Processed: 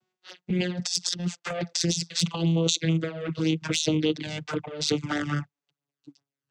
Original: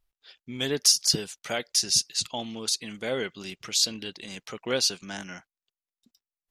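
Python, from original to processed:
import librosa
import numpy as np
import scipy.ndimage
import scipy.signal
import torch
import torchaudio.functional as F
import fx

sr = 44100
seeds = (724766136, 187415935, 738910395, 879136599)

y = fx.vocoder_glide(x, sr, note=54, semitones=-5)
y = fx.over_compress(y, sr, threshold_db=-33.0, ratio=-1.0)
y = fx.env_flanger(y, sr, rest_ms=8.1, full_db=-27.5)
y = y * 10.0 ** (8.5 / 20.0)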